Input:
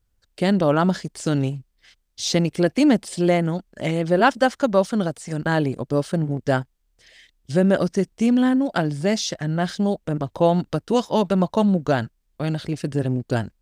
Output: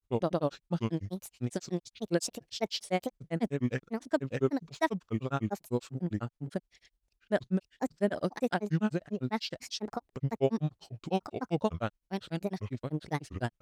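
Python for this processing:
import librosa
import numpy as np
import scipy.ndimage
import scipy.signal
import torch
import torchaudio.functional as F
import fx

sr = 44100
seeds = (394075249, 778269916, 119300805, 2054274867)

y = fx.granulator(x, sr, seeds[0], grain_ms=100.0, per_s=10.0, spray_ms=512.0, spread_st=7)
y = y * 10.0 ** (-7.5 / 20.0)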